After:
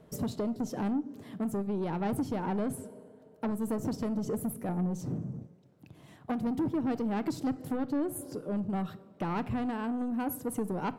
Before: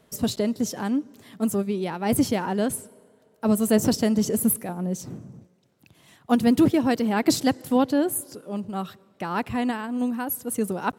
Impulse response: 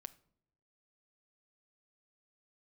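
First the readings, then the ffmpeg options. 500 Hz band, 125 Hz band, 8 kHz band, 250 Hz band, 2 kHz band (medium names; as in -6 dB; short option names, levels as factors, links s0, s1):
-9.5 dB, -4.0 dB, -15.5 dB, -8.5 dB, -11.5 dB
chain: -filter_complex "[0:a]tiltshelf=f=1300:g=7,acompressor=threshold=0.0708:ratio=6,asoftclip=type=tanh:threshold=0.0668[s0];[1:a]atrim=start_sample=2205,atrim=end_sample=6174[s1];[s0][s1]afir=irnorm=-1:irlink=0,volume=1.5"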